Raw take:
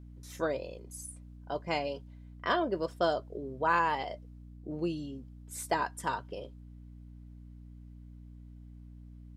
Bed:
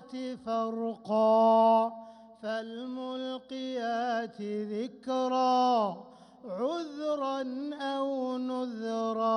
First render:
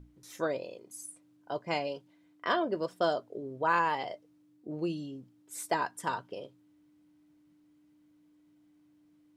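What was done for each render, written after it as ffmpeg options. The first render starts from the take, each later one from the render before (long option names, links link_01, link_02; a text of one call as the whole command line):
ffmpeg -i in.wav -af "bandreject=frequency=60:width_type=h:width=6,bandreject=frequency=120:width_type=h:width=6,bandreject=frequency=180:width_type=h:width=6,bandreject=frequency=240:width_type=h:width=6" out.wav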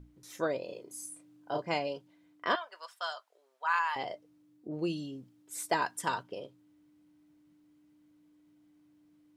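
ffmpeg -i in.wav -filter_complex "[0:a]asettb=1/sr,asplit=3[link_01][link_02][link_03];[link_01]atrim=end=0.654[link_04];[link_02]atrim=start=0.65:end=1.7,asetpts=PTS-STARTPTS,afade=type=in:duration=0.004:curve=qsin,afade=type=out:start_time=1.046:duration=0.004:curve=qsin,asplit=2[link_05][link_06];[link_06]adelay=33,volume=-2dB[link_07];[link_05][link_07]amix=inputs=2:normalize=0,atrim=end_sample=46305[link_08];[link_03]atrim=start=1.696[link_09];[link_04][link_08]acrossfade=duration=0.004:curve1=hsin:curve2=qsin[link_10];[link_10][link_09]acrossfade=duration=0.004:curve1=qsin:curve2=hsin,asettb=1/sr,asplit=3[link_11][link_12][link_13];[link_11]atrim=end=2.554[link_14];[link_12]atrim=start=2.55:end=3.96,asetpts=PTS-STARTPTS,afade=type=in:duration=0.004:curve=qsin,afade=type=out:start_time=1.406:duration=0.004:curve=qsin,highpass=frequency=980:width=0.5412,highpass=frequency=980:width=1.3066[link_15];[link_13]atrim=start=3.956[link_16];[link_14][link_15]acrossfade=duration=0.004:curve1=hsin:curve2=qsin[link_17];[link_17][link_16]acrossfade=duration=0.004:curve1=qsin:curve2=hsin,asettb=1/sr,asplit=3[link_18][link_19][link_20];[link_18]atrim=end=4.684[link_21];[link_19]atrim=start=4.68:end=6.23,asetpts=PTS-STARTPTS,afade=type=in:duration=0.004:curve=qsin,afade=type=out:start_time=1.546:duration=0.004:curve=qsin,adynamicequalizer=threshold=0.00501:dfrequency=1800:dqfactor=0.7:tfrequency=1800:tqfactor=0.7:attack=5:release=100:ratio=0.375:range=2.5:mode=boostabove:tftype=highshelf[link_22];[link_20]atrim=start=6.226[link_23];[link_21][link_22]acrossfade=duration=0.004:curve1=hsin:curve2=qsin[link_24];[link_24][link_23]acrossfade=duration=0.004:curve1=qsin:curve2=hsin" out.wav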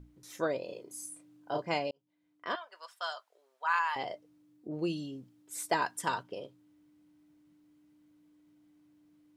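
ffmpeg -i in.wav -filter_complex "[0:a]asplit=2[link_01][link_02];[link_01]atrim=end=1.91,asetpts=PTS-STARTPTS,afade=type=out:start_time=1.906:duration=0.004:curve=hsin[link_03];[link_02]atrim=start=1.91,asetpts=PTS-STARTPTS,afade=type=in:duration=1.19[link_04];[link_03][link_04]concat=n=2:v=0:a=1" out.wav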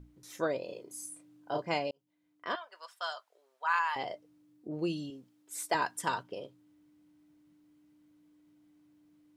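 ffmpeg -i in.wav -filter_complex "[0:a]asettb=1/sr,asplit=3[link_01][link_02][link_03];[link_01]atrim=end=5.104[link_04];[link_02]atrim=start=5.1:end=5.75,asetpts=PTS-STARTPTS,afade=type=in:duration=0.004:curve=qsin,afade=type=out:start_time=0.646:duration=0.004:curve=qsin,highpass=frequency=350:poles=1[link_05];[link_03]atrim=start=5.746[link_06];[link_04][link_05]acrossfade=duration=0.004:curve1=hsin:curve2=qsin[link_07];[link_07][link_06]acrossfade=duration=0.004:curve1=qsin:curve2=hsin" out.wav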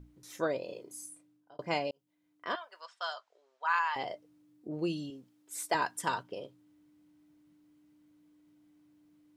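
ffmpeg -i in.wav -filter_complex "[0:a]asettb=1/sr,asplit=3[link_01][link_02][link_03];[link_01]atrim=end=2.814[link_04];[link_02]atrim=start=2.81:end=3.95,asetpts=PTS-STARTPTS,afade=type=in:duration=0.004:curve=qsin,afade=type=out:start_time=1.136:duration=0.004:curve=qsin,lowpass=frequency=7100:width=0.5412,lowpass=frequency=7100:width=1.3066[link_05];[link_03]atrim=start=3.946[link_06];[link_04][link_05]acrossfade=duration=0.004:curve1=hsin:curve2=qsin[link_07];[link_07][link_06]acrossfade=duration=0.004:curve1=qsin:curve2=hsin,asplit=2[link_08][link_09];[link_08]atrim=end=1.59,asetpts=PTS-STARTPTS,afade=type=out:start_time=0.85:duration=0.74[link_10];[link_09]atrim=start=1.59,asetpts=PTS-STARTPTS,afade=type=in:duration=0.004:curve=hsin[link_11];[link_10][link_11]concat=n=2:v=0:a=1" out.wav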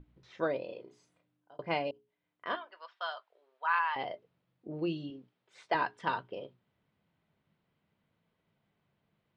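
ffmpeg -i in.wav -af "lowpass=frequency=3700:width=0.5412,lowpass=frequency=3700:width=1.3066,bandreject=frequency=60:width_type=h:width=6,bandreject=frequency=120:width_type=h:width=6,bandreject=frequency=180:width_type=h:width=6,bandreject=frequency=240:width_type=h:width=6,bandreject=frequency=300:width_type=h:width=6,bandreject=frequency=360:width_type=h:width=6,bandreject=frequency=420:width_type=h:width=6" out.wav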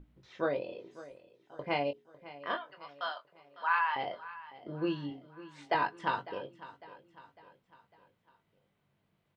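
ffmpeg -i in.wav -filter_complex "[0:a]asplit=2[link_01][link_02];[link_02]adelay=21,volume=-6.5dB[link_03];[link_01][link_03]amix=inputs=2:normalize=0,aecho=1:1:552|1104|1656|2208:0.141|0.0678|0.0325|0.0156" out.wav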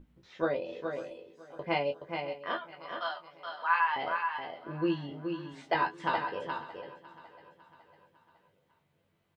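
ffmpeg -i in.wav -filter_complex "[0:a]asplit=2[link_01][link_02];[link_02]adelay=12,volume=-5dB[link_03];[link_01][link_03]amix=inputs=2:normalize=0,aecho=1:1:423:0.501" out.wav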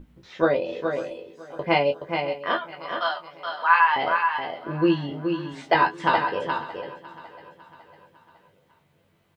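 ffmpeg -i in.wav -af "volume=9.5dB" out.wav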